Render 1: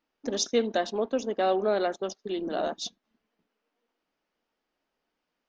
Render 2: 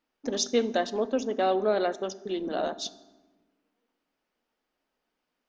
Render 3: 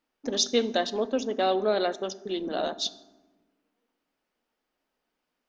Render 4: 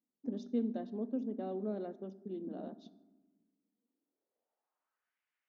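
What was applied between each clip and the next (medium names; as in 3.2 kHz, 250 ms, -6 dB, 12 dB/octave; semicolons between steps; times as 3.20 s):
reverberation RT60 1.2 s, pre-delay 4 ms, DRR 15 dB
dynamic bell 3.8 kHz, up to +7 dB, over -49 dBFS, Q 1.5
band-pass sweep 210 Hz -> 2 kHz, 3.80–5.19 s; trim -2 dB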